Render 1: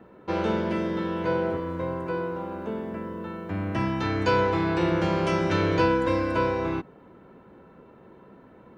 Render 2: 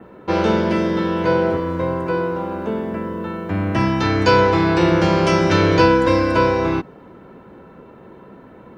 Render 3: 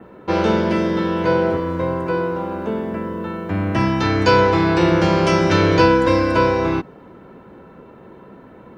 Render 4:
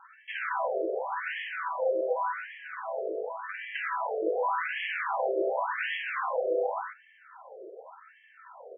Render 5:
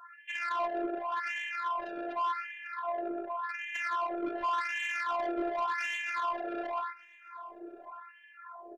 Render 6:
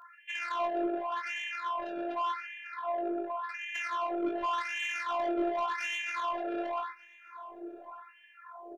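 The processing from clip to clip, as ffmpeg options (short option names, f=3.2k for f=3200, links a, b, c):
-af "adynamicequalizer=threshold=0.00178:dfrequency=5200:dqfactor=2.4:tfrequency=5200:tqfactor=2.4:attack=5:release=100:ratio=0.375:range=3:mode=boostabove:tftype=bell,volume=8.5dB"
-af anull
-af "aeval=exprs='(tanh(14.1*val(0)+0.35)-tanh(0.35))/14.1':c=same,aecho=1:1:49.56|119.5:0.562|0.631,afftfilt=real='re*between(b*sr/1024,480*pow(2400/480,0.5+0.5*sin(2*PI*0.88*pts/sr))/1.41,480*pow(2400/480,0.5+0.5*sin(2*PI*0.88*pts/sr))*1.41)':imag='im*between(b*sr/1024,480*pow(2400/480,0.5+0.5*sin(2*PI*0.88*pts/sr))/1.41,480*pow(2400/480,0.5+0.5*sin(2*PI*0.88*pts/sr))*1.41)':win_size=1024:overlap=0.75,volume=1dB"
-filter_complex "[0:a]asoftclip=type=tanh:threshold=-29.5dB,afftfilt=real='hypot(re,im)*cos(PI*b)':imag='0':win_size=512:overlap=0.75,asplit=2[a][b];[b]adelay=1185,lowpass=f=1.1k:p=1,volume=-15.5dB,asplit=2[c][d];[d]adelay=1185,lowpass=f=1.1k:p=1,volume=0.26,asplit=2[e][f];[f]adelay=1185,lowpass=f=1.1k:p=1,volume=0.26[g];[a][c][e][g]amix=inputs=4:normalize=0,volume=4.5dB"
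-filter_complex "[0:a]asplit=2[a][b];[b]adelay=20,volume=-5dB[c];[a][c]amix=inputs=2:normalize=0"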